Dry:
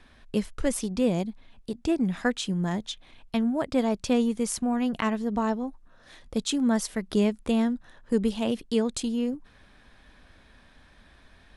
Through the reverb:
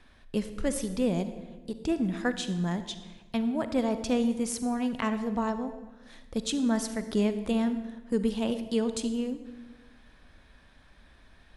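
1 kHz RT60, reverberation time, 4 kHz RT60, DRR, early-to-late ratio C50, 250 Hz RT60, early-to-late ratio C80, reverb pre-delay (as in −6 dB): 1.1 s, 1.2 s, 0.85 s, 10.0 dB, 11.0 dB, 1.6 s, 12.0 dB, 39 ms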